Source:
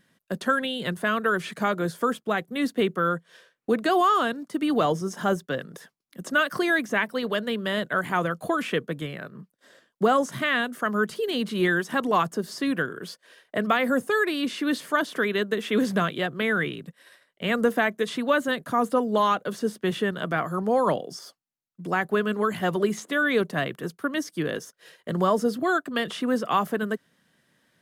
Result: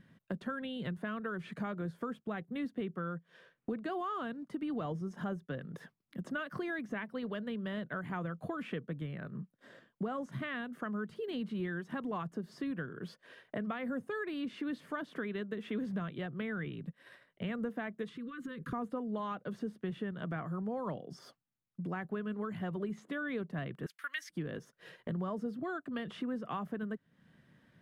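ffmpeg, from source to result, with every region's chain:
ffmpeg -i in.wav -filter_complex "[0:a]asettb=1/sr,asplit=3[link_01][link_02][link_03];[link_01]atrim=end=18.094[link_04];[link_02]atrim=start=18.09:end=18.73,asetpts=PTS-STARTPTS,afade=type=in:duration=0.004:curve=qsin,afade=type=out:start_time=0.636:duration=0.004:curve=qsin,acompressor=threshold=-35dB:ratio=8:attack=3.2:release=140:knee=1:detection=peak,asuperstop=centerf=730:order=20:qfactor=1.5[link_05];[link_03]atrim=start=18.726[link_06];[link_04][link_05]acrossfade=duration=0.004:curve1=hsin:curve2=qsin[link_07];[link_07][link_06]acrossfade=duration=0.004:curve1=qsin:curve2=hsin,asettb=1/sr,asplit=3[link_08][link_09][link_10];[link_08]atrim=end=23.864[link_11];[link_09]atrim=start=23.86:end=24.3,asetpts=PTS-STARTPTS,afade=type=in:duration=0.004:curve=qsin,afade=type=out:start_time=0.436:duration=0.004:curve=qsin,highpass=frequency=1900:width_type=q:width=2.4,highshelf=frequency=2800:gain=11.5[link_12];[link_10]atrim=start=24.296[link_13];[link_11][link_12]acrossfade=duration=0.004:curve1=hsin:curve2=qsin[link_14];[link_14][link_13]acrossfade=duration=0.004:curve1=qsin:curve2=hsin,bass=frequency=250:gain=11,treble=frequency=4000:gain=-13,acompressor=threshold=-39dB:ratio=3,volume=-1.5dB" out.wav

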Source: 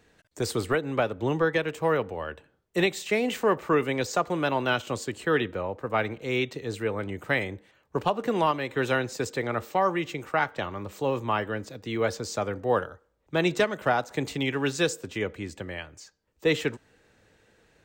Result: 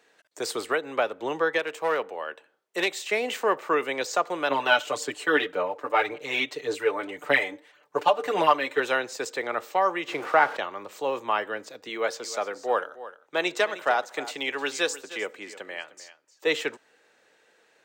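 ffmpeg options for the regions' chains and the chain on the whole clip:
ffmpeg -i in.wav -filter_complex "[0:a]asettb=1/sr,asplit=3[link_01][link_02][link_03];[link_01]atrim=end=1.594[link_04];[link_02]atrim=start=1.59:end=3.11,asetpts=PTS-STARTPTS,afade=type=in:duration=0.004:curve=qsin,afade=type=out:start_time=1.516:duration=0.004:curve=qsin,highpass=frequency=190:poles=1,aeval=exprs='clip(val(0),-1,0.0891)':channel_layout=same[link_05];[link_03]atrim=start=3.106[link_06];[link_04][link_05]acrossfade=duration=0.004:curve1=hsin:curve2=qsin[link_07];[link_07][link_06]acrossfade=duration=0.004:curve1=qsin:curve2=hsin,asettb=1/sr,asplit=3[link_08][link_09][link_10];[link_08]atrim=end=4.504[link_11];[link_09]atrim=start=4.5:end=8.8,asetpts=PTS-STARTPTS,afade=type=in:duration=0.004:curve=qsin,afade=type=out:start_time=4.296:duration=0.004:curve=qsin,aecho=1:1:6.8:0.81,atrim=end_sample=189630,aphaser=in_gain=1:out_gain=1:delay=3.6:decay=0.41:speed=1.8:type=sinusoidal[link_12];[link_10]atrim=start=8.796[link_13];[link_11][link_12]acrossfade=duration=0.004:curve1=hsin:curve2=qsin[link_14];[link_14][link_13]acrossfade=duration=0.004:curve1=qsin:curve2=hsin,asettb=1/sr,asplit=3[link_15][link_16][link_17];[link_15]atrim=end=10.084[link_18];[link_16]atrim=start=10.08:end=10.57,asetpts=PTS-STARTPTS,afade=type=in:duration=0.004:curve=qsin,afade=type=out:start_time=0.486:duration=0.004:curve=qsin,aeval=exprs='val(0)+0.5*0.015*sgn(val(0))':channel_layout=same,lowpass=frequency=1600:poles=1,acontrast=38[link_19];[link_17]atrim=start=10.566[link_20];[link_18][link_19]acrossfade=duration=0.004:curve1=hsin:curve2=qsin[link_21];[link_21][link_20]acrossfade=duration=0.004:curve1=qsin:curve2=hsin,asettb=1/sr,asplit=3[link_22][link_23][link_24];[link_22]atrim=end=11.894[link_25];[link_23]atrim=start=11.89:end=16.47,asetpts=PTS-STARTPTS,afade=type=in:duration=0.004:curve=qsin,afade=type=out:start_time=4.576:duration=0.004:curve=qsin,highpass=frequency=240:poles=1,aecho=1:1:306:0.168,atrim=end_sample=201978[link_26];[link_24]atrim=start=16.466[link_27];[link_25][link_26]acrossfade=duration=0.004:curve1=hsin:curve2=qsin[link_28];[link_28][link_27]acrossfade=duration=0.004:curve1=qsin:curve2=hsin,highpass=470,highshelf=frequency=11000:gain=-4,volume=2dB" out.wav

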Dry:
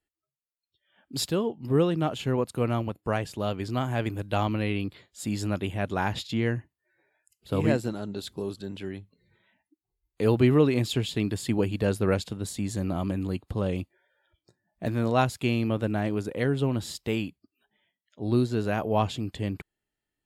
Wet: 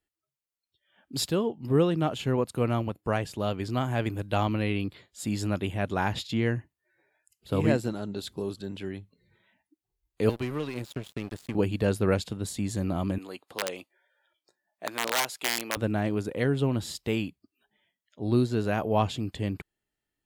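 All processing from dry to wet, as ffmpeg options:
ffmpeg -i in.wav -filter_complex "[0:a]asettb=1/sr,asplit=3[link_01][link_02][link_03];[link_01]atrim=end=10.294[link_04];[link_02]atrim=start=10.29:end=11.55,asetpts=PTS-STARTPTS,afade=type=in:duration=0.004:curve=qsin,afade=type=out:start_time=1.256:duration=0.004:curve=qsin,acrossover=split=570|1400|8000[link_05][link_06][link_07][link_08];[link_05]acompressor=threshold=-31dB:ratio=3[link_09];[link_06]acompressor=threshold=-45dB:ratio=3[link_10];[link_07]acompressor=threshold=-41dB:ratio=3[link_11];[link_08]acompressor=threshold=-55dB:ratio=3[link_12];[link_09][link_10][link_11][link_12]amix=inputs=4:normalize=0,aeval=exprs='sgn(val(0))*max(abs(val(0))-0.0119,0)':channel_layout=same[link_13];[link_03]atrim=start=11.546[link_14];[link_04][link_13]acrossfade=duration=0.004:curve1=hsin:curve2=qsin[link_15];[link_15][link_14]acrossfade=duration=0.004:curve1=qsin:curve2=hsin,asettb=1/sr,asplit=3[link_16][link_17][link_18];[link_16]atrim=end=13.184[link_19];[link_17]atrim=start=13.18:end=15.77,asetpts=PTS-STARTPTS,afade=type=in:duration=0.004:curve=qsin,afade=type=out:start_time=2.586:duration=0.004:curve=qsin,aeval=exprs='(mod(7.08*val(0)+1,2)-1)/7.08':channel_layout=same,highpass=530[link_20];[link_18]atrim=start=15.766[link_21];[link_19][link_20]acrossfade=duration=0.004:curve1=hsin:curve2=qsin[link_22];[link_22][link_21]acrossfade=duration=0.004:curve1=qsin:curve2=hsin" out.wav

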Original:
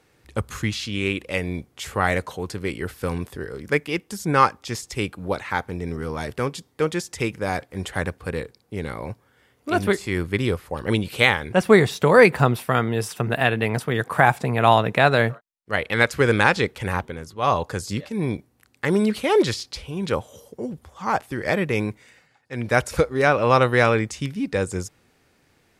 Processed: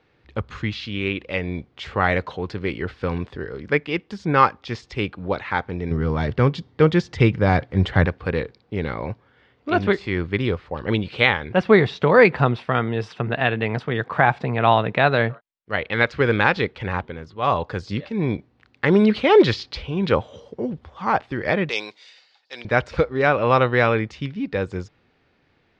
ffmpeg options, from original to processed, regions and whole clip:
ffmpeg -i in.wav -filter_complex "[0:a]asettb=1/sr,asplit=3[link_01][link_02][link_03];[link_01]atrim=end=5.914[link_04];[link_02]atrim=start=5.91:end=8.06,asetpts=PTS-STARTPTS,afade=type=in:duration=0.004:curve=qsin,afade=type=out:start_time=2.146:duration=0.004:curve=qsin,equalizer=frequency=110:width=0.67:gain=9,bandreject=frequency=2500:width=21[link_05];[link_03]atrim=start=8.056[link_06];[link_04][link_05]acrossfade=duration=0.004:curve1=hsin:curve2=qsin[link_07];[link_07][link_06]acrossfade=duration=0.004:curve1=qsin:curve2=hsin,asettb=1/sr,asplit=3[link_08][link_09][link_10];[link_08]atrim=end=21.694[link_11];[link_09]atrim=start=21.69:end=22.65,asetpts=PTS-STARTPTS,afade=type=in:duration=0.004:curve=qsin,afade=type=out:start_time=0.956:duration=0.004:curve=qsin,highpass=630,highshelf=frequency=2900:width_type=q:width=1.5:gain=14[link_12];[link_10]atrim=start=22.646[link_13];[link_11][link_12]acrossfade=duration=0.004:curve1=hsin:curve2=qsin[link_14];[link_14][link_13]acrossfade=duration=0.004:curve1=qsin:curve2=hsin,lowpass=frequency=4200:width=0.5412,lowpass=frequency=4200:width=1.3066,dynaudnorm=framelen=120:gausssize=31:maxgain=11.5dB,volume=-1dB" out.wav

